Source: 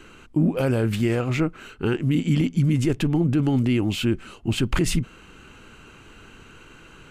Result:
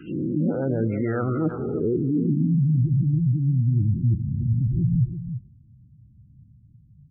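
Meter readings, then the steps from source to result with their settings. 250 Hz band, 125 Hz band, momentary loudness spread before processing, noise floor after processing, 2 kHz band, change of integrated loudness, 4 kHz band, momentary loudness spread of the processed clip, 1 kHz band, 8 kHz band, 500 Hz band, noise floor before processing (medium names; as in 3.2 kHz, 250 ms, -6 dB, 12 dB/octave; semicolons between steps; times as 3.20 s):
-2.0 dB, +2.5 dB, 7 LU, -54 dBFS, under -10 dB, 0.0 dB, under -35 dB, 5 LU, no reading, under -40 dB, -1.5 dB, -48 dBFS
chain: reverse spectral sustain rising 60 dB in 0.97 s; low-pass sweep 3.4 kHz -> 130 Hz, 0.76–2.68 s; gate -34 dBFS, range -9 dB; bass shelf 68 Hz -10 dB; reverse; compression 16:1, threshold -25 dBFS, peak gain reduction 15 dB; reverse; touch-sensitive phaser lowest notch 580 Hz, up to 3 kHz, full sweep at -33 dBFS; delay 335 ms -9.5 dB; spectral gate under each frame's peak -20 dB strong; high-pass 46 Hz; bass shelf 290 Hz +4.5 dB; speakerphone echo 300 ms, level -27 dB; trim +3.5 dB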